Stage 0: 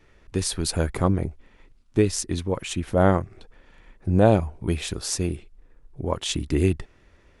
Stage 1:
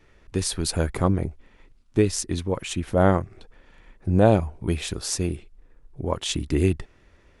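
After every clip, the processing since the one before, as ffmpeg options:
-af anull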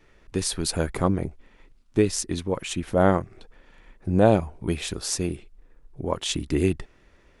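-af "equalizer=f=83:w=1.4:g=-5"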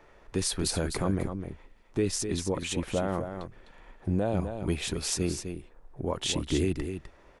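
-filter_complex "[0:a]acrossover=split=680|900[a][b][c];[b]acompressor=mode=upward:threshold=-47dB:ratio=2.5[d];[a][d][c]amix=inputs=3:normalize=0,alimiter=limit=-16dB:level=0:latency=1:release=32,aecho=1:1:254:0.398,volume=-2dB"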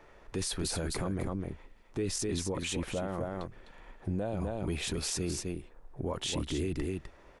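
-af "alimiter=level_in=1dB:limit=-24dB:level=0:latency=1:release=13,volume=-1dB"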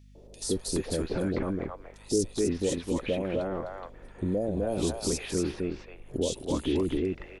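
-filter_complex "[0:a]equalizer=f=125:t=o:w=1:g=-4,equalizer=f=250:t=o:w=1:g=5,equalizer=f=500:t=o:w=1:g=8,acrossover=split=680|3300[a][b][c];[a]adelay=150[d];[b]adelay=420[e];[d][e][c]amix=inputs=3:normalize=0,aeval=exprs='val(0)+0.002*(sin(2*PI*50*n/s)+sin(2*PI*2*50*n/s)/2+sin(2*PI*3*50*n/s)/3+sin(2*PI*4*50*n/s)/4+sin(2*PI*5*50*n/s)/5)':c=same,volume=1.5dB"

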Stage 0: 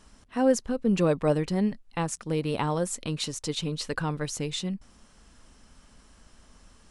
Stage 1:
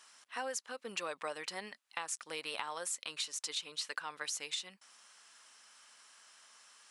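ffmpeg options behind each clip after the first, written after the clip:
-af "highpass=1.2k,acompressor=threshold=-37dB:ratio=10,volume=2dB"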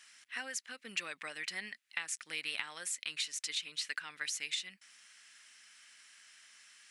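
-af "equalizer=f=500:t=o:w=1:g=-9,equalizer=f=1k:t=o:w=1:g=-11,equalizer=f=2k:t=o:w=1:g=9"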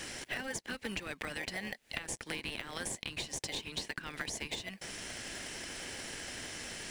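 -filter_complex "[0:a]acrossover=split=450[a][b];[b]acompressor=threshold=-45dB:ratio=3[c];[a][c]amix=inputs=2:normalize=0,asplit=2[d][e];[e]acrusher=samples=33:mix=1:aa=0.000001,volume=-5dB[f];[d][f]amix=inputs=2:normalize=0,acompressor=threshold=-51dB:ratio=6,volume=15dB"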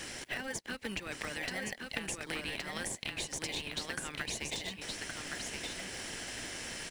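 -af "aecho=1:1:1119:0.631"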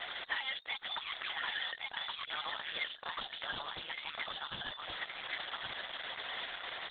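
-af "asoftclip=type=tanh:threshold=-33.5dB,lowpass=f=3.1k:t=q:w=0.5098,lowpass=f=3.1k:t=q:w=0.6013,lowpass=f=3.1k:t=q:w=0.9,lowpass=f=3.1k:t=q:w=2.563,afreqshift=-3700,volume=6dB" -ar 48000 -c:a libopus -b:a 8k

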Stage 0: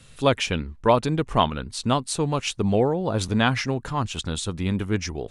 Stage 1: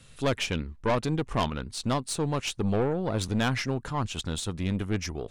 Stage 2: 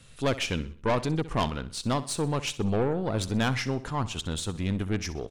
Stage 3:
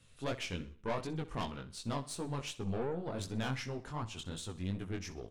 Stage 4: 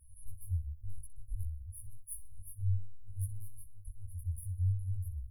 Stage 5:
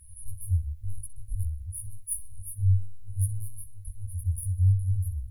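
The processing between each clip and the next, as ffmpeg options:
-af "aeval=exprs='(tanh(7.94*val(0)+0.4)-tanh(0.4))/7.94':c=same,volume=-2dB"
-af "aecho=1:1:63|126|189|252:0.158|0.0697|0.0307|0.0135"
-af "flanger=delay=16.5:depth=6:speed=2.7,volume=-7.5dB"
-af "afftfilt=real='re*(1-between(b*sr/4096,100,9600))':imag='im*(1-between(b*sr/4096,100,9600))':win_size=4096:overlap=0.75,volume=11.5dB"
-af "equalizer=f=125:t=o:w=1:g=7,equalizer=f=2k:t=o:w=1:g=10,equalizer=f=4k:t=o:w=1:g=5,equalizer=f=8k:t=o:w=1:g=10,volume=5.5dB"

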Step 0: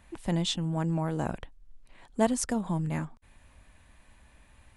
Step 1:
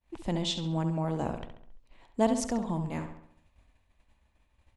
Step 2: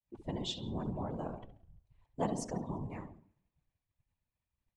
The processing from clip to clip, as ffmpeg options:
-filter_complex "[0:a]agate=range=-33dB:threshold=-47dB:ratio=3:detection=peak,equalizer=f=160:t=o:w=0.67:g=-4,equalizer=f=1.6k:t=o:w=0.67:g=-6,equalizer=f=10k:t=o:w=0.67:g=-10,asplit=2[a][b];[b]adelay=68,lowpass=f=4.7k:p=1,volume=-8dB,asplit=2[c][d];[d]adelay=68,lowpass=f=4.7k:p=1,volume=0.51,asplit=2[e][f];[f]adelay=68,lowpass=f=4.7k:p=1,volume=0.51,asplit=2[g][h];[h]adelay=68,lowpass=f=4.7k:p=1,volume=0.51,asplit=2[i][j];[j]adelay=68,lowpass=f=4.7k:p=1,volume=0.51,asplit=2[k][l];[l]adelay=68,lowpass=f=4.7k:p=1,volume=0.51[m];[c][e][g][i][k][m]amix=inputs=6:normalize=0[n];[a][n]amix=inputs=2:normalize=0"
-af "afftfilt=real='hypot(re,im)*cos(2*PI*random(0))':imag='hypot(re,im)*sin(2*PI*random(1))':win_size=512:overlap=0.75,aecho=1:1:171|342|513:0.0841|0.037|0.0163,afftdn=nr=13:nf=-52,volume=-2dB"

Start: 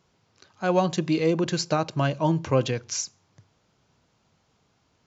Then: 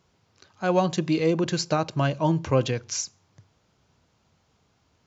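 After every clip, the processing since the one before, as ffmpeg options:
-af "equalizer=f=73:t=o:w=0.63:g=6.5"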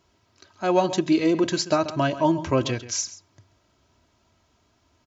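-filter_complex "[0:a]aecho=1:1:3.1:0.56,asplit=2[a][b];[b]adelay=134.1,volume=-14dB,highshelf=f=4k:g=-3.02[c];[a][c]amix=inputs=2:normalize=0,volume=1dB"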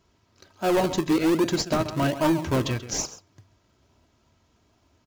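-filter_complex "[0:a]asplit=2[a][b];[b]acrusher=samples=41:mix=1:aa=0.000001:lfo=1:lforange=41:lforate=1.2,volume=-5dB[c];[a][c]amix=inputs=2:normalize=0,asoftclip=type=hard:threshold=-14.5dB,volume=-2dB"

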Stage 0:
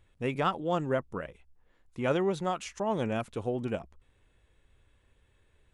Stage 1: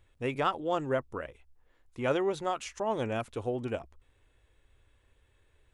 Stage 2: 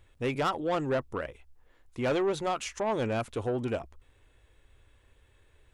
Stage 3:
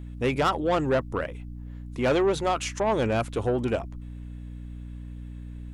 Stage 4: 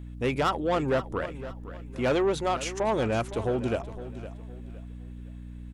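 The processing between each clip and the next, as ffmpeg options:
-af "equalizer=f=180:w=3.3:g=-12"
-af "asoftclip=type=tanh:threshold=-27dB,volume=4.5dB"
-af "aeval=exprs='val(0)+0.00794*(sin(2*PI*60*n/s)+sin(2*PI*2*60*n/s)/2+sin(2*PI*3*60*n/s)/3+sin(2*PI*4*60*n/s)/4+sin(2*PI*5*60*n/s)/5)':c=same,volume=5dB"
-af "aecho=1:1:512|1024|1536:0.2|0.0638|0.0204,volume=-2dB"

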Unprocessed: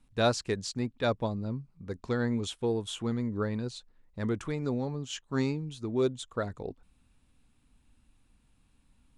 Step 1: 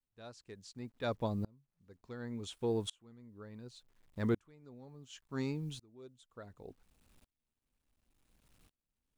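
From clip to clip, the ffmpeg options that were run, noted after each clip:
-af "acrusher=bits=10:mix=0:aa=0.000001,aeval=exprs='val(0)*pow(10,-31*if(lt(mod(-0.69*n/s,1),2*abs(-0.69)/1000),1-mod(-0.69*n/s,1)/(2*abs(-0.69)/1000),(mod(-0.69*n/s,1)-2*abs(-0.69)/1000)/(1-2*abs(-0.69)/1000))/20)':c=same"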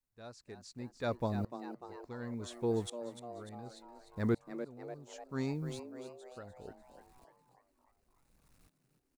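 -filter_complex "[0:a]equalizer=f=3.1k:w=3.5:g=-8,asplit=2[a][b];[b]asplit=6[c][d][e][f][g][h];[c]adelay=297,afreqshift=120,volume=-10.5dB[i];[d]adelay=594,afreqshift=240,volume=-15.5dB[j];[e]adelay=891,afreqshift=360,volume=-20.6dB[k];[f]adelay=1188,afreqshift=480,volume=-25.6dB[l];[g]adelay=1485,afreqshift=600,volume=-30.6dB[m];[h]adelay=1782,afreqshift=720,volume=-35.7dB[n];[i][j][k][l][m][n]amix=inputs=6:normalize=0[o];[a][o]amix=inputs=2:normalize=0,volume=1dB"

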